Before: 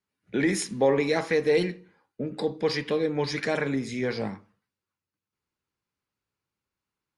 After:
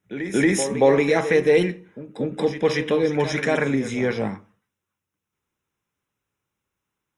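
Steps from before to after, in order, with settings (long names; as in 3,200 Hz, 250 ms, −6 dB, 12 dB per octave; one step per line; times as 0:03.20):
Butterworth band-reject 4,500 Hz, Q 3.3
backwards echo 230 ms −11 dB
level +5.5 dB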